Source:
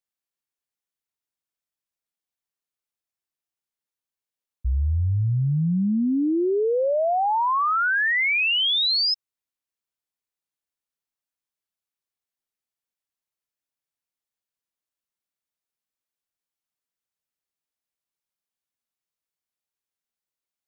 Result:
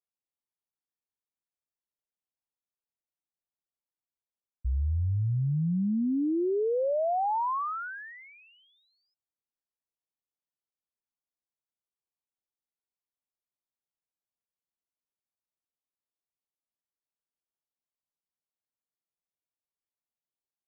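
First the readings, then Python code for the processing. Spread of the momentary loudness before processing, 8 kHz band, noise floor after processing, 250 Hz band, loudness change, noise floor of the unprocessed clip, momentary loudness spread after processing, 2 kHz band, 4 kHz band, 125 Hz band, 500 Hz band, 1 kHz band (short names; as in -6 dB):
6 LU, n/a, under -85 dBFS, -5.5 dB, -7.5 dB, under -85 dBFS, 12 LU, -21.5 dB, under -40 dB, -5.5 dB, -5.5 dB, -7.5 dB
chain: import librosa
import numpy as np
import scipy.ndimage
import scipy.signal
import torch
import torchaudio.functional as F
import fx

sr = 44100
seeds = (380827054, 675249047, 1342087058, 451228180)

y = scipy.signal.sosfilt(scipy.signal.butter(4, 1100.0, 'lowpass', fs=sr, output='sos'), x)
y = y * librosa.db_to_amplitude(-5.5)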